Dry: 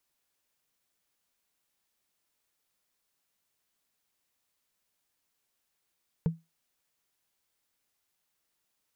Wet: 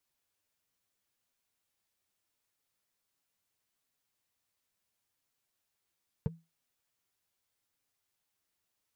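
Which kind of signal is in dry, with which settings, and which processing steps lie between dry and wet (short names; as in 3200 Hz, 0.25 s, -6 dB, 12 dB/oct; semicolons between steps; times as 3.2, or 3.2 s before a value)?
wood hit, lowest mode 164 Hz, decay 0.21 s, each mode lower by 10 dB, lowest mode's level -19.5 dB
bell 94 Hz +5 dB 0.93 oct; flange 0.76 Hz, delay 7.1 ms, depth 4.2 ms, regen -27%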